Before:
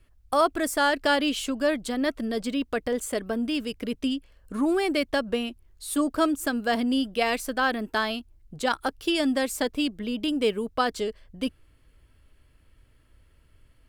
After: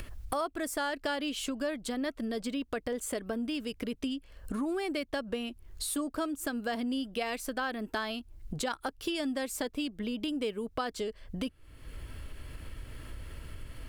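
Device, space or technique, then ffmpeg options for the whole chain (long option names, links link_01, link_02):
upward and downward compression: -af "acompressor=mode=upward:threshold=-27dB:ratio=2.5,acompressor=threshold=-33dB:ratio=3"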